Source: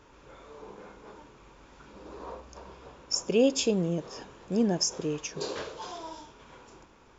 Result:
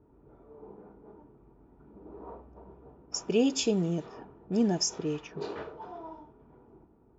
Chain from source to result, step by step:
notch comb filter 540 Hz
floating-point word with a short mantissa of 8 bits
low-pass that shuts in the quiet parts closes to 450 Hz, open at −25 dBFS

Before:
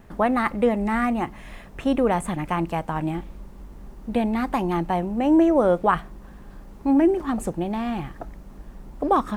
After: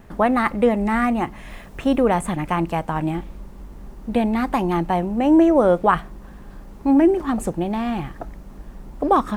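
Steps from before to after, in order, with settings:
0:01.50–0:02.02: bit-depth reduction 10 bits, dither none
level +3 dB

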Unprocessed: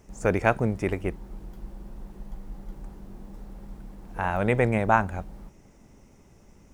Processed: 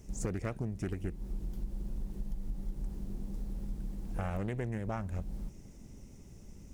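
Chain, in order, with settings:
parametric band 1,100 Hz −13.5 dB 2.9 octaves
downward compressor 16 to 1, threshold −36 dBFS, peak gain reduction 15 dB
highs frequency-modulated by the lows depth 0.5 ms
level +5 dB

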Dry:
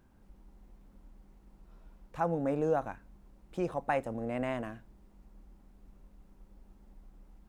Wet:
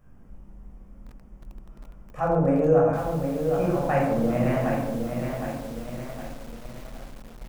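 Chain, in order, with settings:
parametric band 4,000 Hz −12.5 dB 0.5 octaves
convolution reverb RT60 0.95 s, pre-delay 15 ms, DRR −3.5 dB
feedback echo at a low word length 763 ms, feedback 55%, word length 7 bits, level −5.5 dB

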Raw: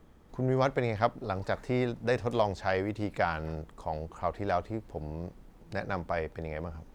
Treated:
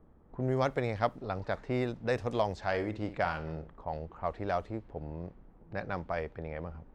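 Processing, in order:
0:02.56–0:03.83: flutter between parallel walls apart 9.6 metres, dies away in 0.28 s
low-pass that shuts in the quiet parts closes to 1,100 Hz, open at −24 dBFS
level −2.5 dB

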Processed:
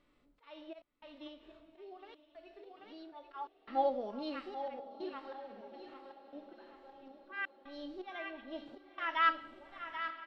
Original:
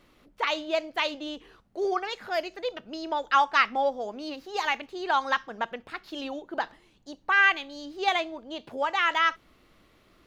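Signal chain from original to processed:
hearing-aid frequency compression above 3,800 Hz 1.5 to 1
on a send at −15 dB: convolution reverb RT60 0.95 s, pre-delay 3 ms
on the sum: volume swells 700 ms
high-shelf EQ 6,600 Hz −8.5 dB
repeating echo 786 ms, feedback 39%, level −9 dB
harmonic and percussive parts rebalanced percussive −17 dB
flanger 0.32 Hz, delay 6.7 ms, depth 1.8 ms, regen +71%
0:01.27–0:03.12: downward compressor, threshold −51 dBFS, peak gain reduction 11 dB
gate pattern "xxxxxxxx..xxx" 147 BPM −60 dB
feedback delay with all-pass diffusion 920 ms, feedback 58%, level −15.5 dB
automatic gain control gain up to 6 dB
level −4 dB

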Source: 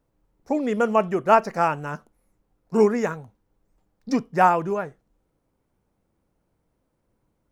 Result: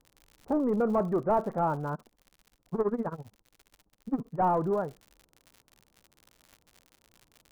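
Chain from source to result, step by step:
soft clipping −21 dBFS, distortion −7 dB
low-pass filter 1,200 Hz 24 dB per octave
surface crackle 100 per second −41 dBFS
0:01.94–0:04.41: amplitude tremolo 15 Hz, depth 90%

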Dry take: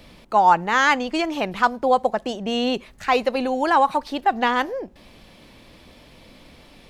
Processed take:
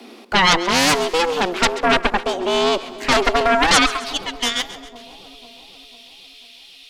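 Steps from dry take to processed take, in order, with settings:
high-pass filter sweep 69 Hz → 3,000 Hz, 0:02.84–0:04.14
frequency shifter +170 Hz
harmonic generator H 3 −12 dB, 7 −7 dB, 8 −8 dB, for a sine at −2 dBFS
on a send: echo with a time of its own for lows and highs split 860 Hz, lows 496 ms, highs 134 ms, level −15 dB
on the sum: level −4 dB

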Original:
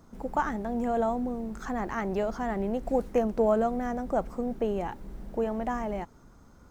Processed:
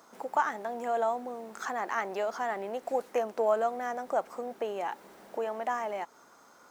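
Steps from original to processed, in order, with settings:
in parallel at +1 dB: downward compressor, threshold −38 dBFS, peak gain reduction 17 dB
on the sum: high-pass filter 610 Hz 12 dB per octave

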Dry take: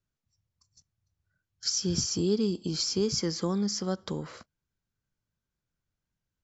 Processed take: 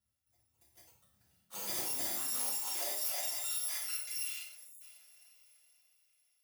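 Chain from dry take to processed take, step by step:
samples in bit-reversed order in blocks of 256 samples
parametric band 480 Hz −10 dB 0.2 octaves
reversed playback
downward compressor 6 to 1, threshold −37 dBFS, peak gain reduction 14 dB
reversed playback
high-pass filter sweep 81 Hz → 2,500 Hz, 0:01.36–0:04.28
on a send: feedback delay with all-pass diffusion 513 ms, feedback 41%, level −15.5 dB
on the sum: time-frequency box erased 0:04.61–0:04.81, 640–6,500 Hz
delay with pitch and tempo change per echo 295 ms, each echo +5 semitones, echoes 3
reverb whose tail is shaped and stops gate 170 ms falling, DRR −4.5 dB
level −4 dB

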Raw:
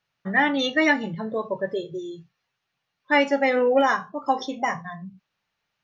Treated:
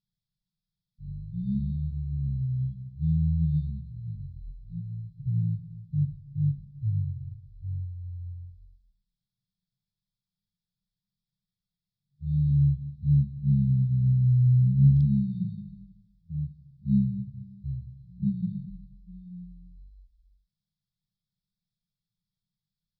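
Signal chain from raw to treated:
phaser with its sweep stopped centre 530 Hz, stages 4
change of speed 0.254×
brick-wall band-stop 210–3,200 Hz

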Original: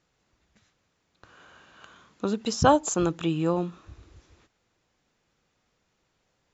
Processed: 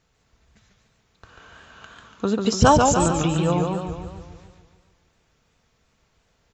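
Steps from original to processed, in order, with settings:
low shelf with overshoot 150 Hz +6 dB, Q 1.5
comb filter 4.5 ms, depth 35%
feedback echo with a swinging delay time 145 ms, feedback 55%, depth 144 cents, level −4 dB
level +4 dB

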